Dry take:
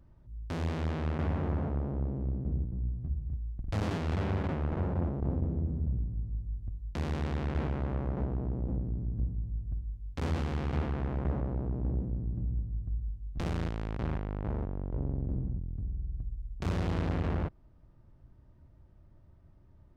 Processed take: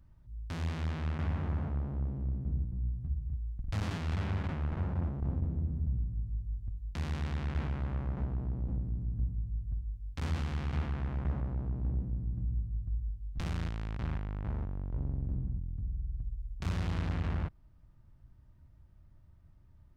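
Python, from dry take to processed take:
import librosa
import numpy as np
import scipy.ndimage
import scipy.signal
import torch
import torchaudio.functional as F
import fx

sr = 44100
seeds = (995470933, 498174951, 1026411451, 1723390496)

y = fx.peak_eq(x, sr, hz=440.0, db=-9.5, octaves=2.0)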